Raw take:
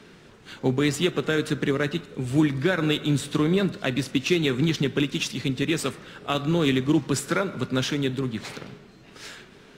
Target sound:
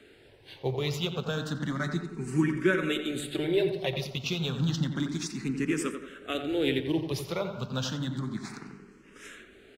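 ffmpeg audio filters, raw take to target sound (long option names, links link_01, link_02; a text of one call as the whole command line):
ffmpeg -i in.wav -filter_complex "[0:a]asettb=1/sr,asplit=3[link_01][link_02][link_03];[link_01]atrim=end=1.794[link_04];[link_02]atrim=start=1.79:end=4.06,asetpts=PTS-STARTPTS,afade=type=in:duration=0.004:curve=qsin,afade=type=out:start_time=2.266:duration=0.004:curve=qsin,aecho=1:1:5.3:0.63,atrim=end_sample=100107[link_05];[link_03]atrim=start=4.056[link_06];[link_04][link_05]acrossfade=duration=0.004:curve1=hsin:curve2=qsin[link_07];[link_07][link_06]acrossfade=duration=0.004:curve1=qsin:curve2=hsin,asplit=2[link_08][link_09];[link_09]adelay=88,lowpass=frequency=1800:poles=1,volume=-6.5dB,asplit=2[link_10][link_11];[link_11]adelay=88,lowpass=frequency=1800:poles=1,volume=0.51,asplit=2[link_12][link_13];[link_13]adelay=88,lowpass=frequency=1800:poles=1,volume=0.51,asplit=2[link_14][link_15];[link_15]adelay=88,lowpass=frequency=1800:poles=1,volume=0.51,asplit=2[link_16][link_17];[link_17]adelay=88,lowpass=frequency=1800:poles=1,volume=0.51,asplit=2[link_18][link_19];[link_19]adelay=88,lowpass=frequency=1800:poles=1,volume=0.51[link_20];[link_08][link_10][link_12][link_14][link_16][link_18][link_20]amix=inputs=7:normalize=0,asplit=2[link_21][link_22];[link_22]afreqshift=0.31[link_23];[link_21][link_23]amix=inputs=2:normalize=1,volume=-3.5dB" out.wav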